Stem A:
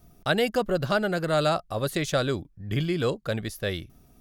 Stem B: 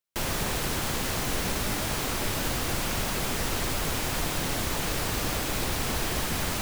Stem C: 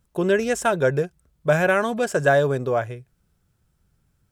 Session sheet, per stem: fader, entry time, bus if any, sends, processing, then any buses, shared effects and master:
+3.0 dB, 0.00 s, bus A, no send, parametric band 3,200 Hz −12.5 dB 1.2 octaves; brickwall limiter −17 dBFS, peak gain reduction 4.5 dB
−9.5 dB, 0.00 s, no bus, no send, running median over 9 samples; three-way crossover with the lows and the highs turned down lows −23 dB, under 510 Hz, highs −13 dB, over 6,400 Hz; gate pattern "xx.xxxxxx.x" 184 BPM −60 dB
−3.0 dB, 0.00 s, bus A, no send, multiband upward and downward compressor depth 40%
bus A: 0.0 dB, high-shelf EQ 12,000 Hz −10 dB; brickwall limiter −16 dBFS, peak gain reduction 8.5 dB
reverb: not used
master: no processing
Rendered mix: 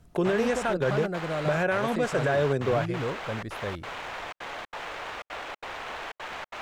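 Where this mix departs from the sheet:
stem A +3.0 dB → −4.5 dB
stem B −9.5 dB → −0.5 dB
master: extra high-shelf EQ 8,000 Hz −6.5 dB

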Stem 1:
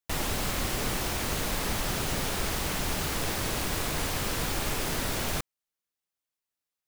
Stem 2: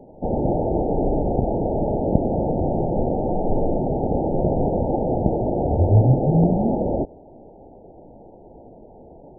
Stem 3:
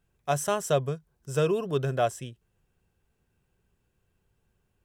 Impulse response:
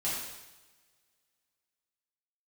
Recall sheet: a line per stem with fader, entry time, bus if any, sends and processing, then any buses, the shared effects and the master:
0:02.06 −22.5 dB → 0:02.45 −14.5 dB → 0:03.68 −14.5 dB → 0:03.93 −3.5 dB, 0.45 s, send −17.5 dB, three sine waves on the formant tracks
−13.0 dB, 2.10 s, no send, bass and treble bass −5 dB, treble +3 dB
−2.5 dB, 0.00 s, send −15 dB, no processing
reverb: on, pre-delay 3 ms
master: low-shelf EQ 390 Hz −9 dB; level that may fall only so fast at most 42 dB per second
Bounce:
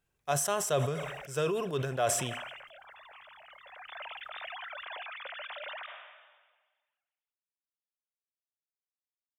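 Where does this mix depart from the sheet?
stem 1 −22.5 dB → −31.5 dB
stem 2: muted
reverb return −9.5 dB

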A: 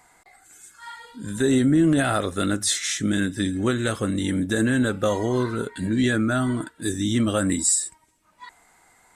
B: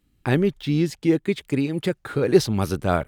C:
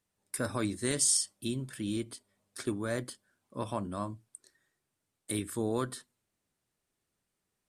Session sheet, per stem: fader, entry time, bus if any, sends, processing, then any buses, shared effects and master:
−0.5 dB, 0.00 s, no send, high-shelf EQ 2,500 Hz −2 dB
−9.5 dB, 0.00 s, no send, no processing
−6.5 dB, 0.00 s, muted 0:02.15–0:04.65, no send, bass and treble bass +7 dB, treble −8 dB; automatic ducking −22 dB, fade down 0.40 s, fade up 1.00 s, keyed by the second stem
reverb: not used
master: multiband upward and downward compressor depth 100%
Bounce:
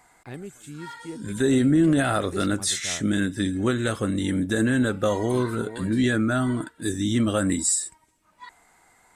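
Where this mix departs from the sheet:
stem B −9.5 dB → −18.0 dB
stem C: missing bass and treble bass +7 dB, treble −8 dB
master: missing multiband upward and downward compressor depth 100%

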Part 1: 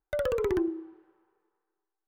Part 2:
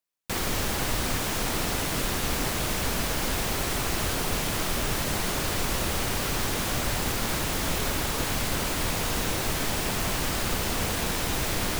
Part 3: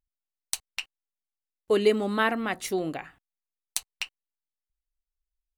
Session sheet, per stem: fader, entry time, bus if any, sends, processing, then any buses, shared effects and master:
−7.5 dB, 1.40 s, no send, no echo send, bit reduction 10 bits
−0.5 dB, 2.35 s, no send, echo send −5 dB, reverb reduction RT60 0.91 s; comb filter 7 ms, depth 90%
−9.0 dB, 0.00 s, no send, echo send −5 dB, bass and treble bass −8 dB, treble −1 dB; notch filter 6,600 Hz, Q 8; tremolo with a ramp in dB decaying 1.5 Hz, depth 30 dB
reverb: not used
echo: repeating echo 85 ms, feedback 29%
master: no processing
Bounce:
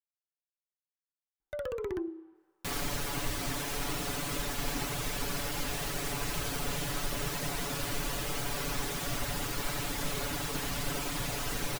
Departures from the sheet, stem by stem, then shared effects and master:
stem 1: missing bit reduction 10 bits
stem 2 −0.5 dB → −8.0 dB
stem 3: muted

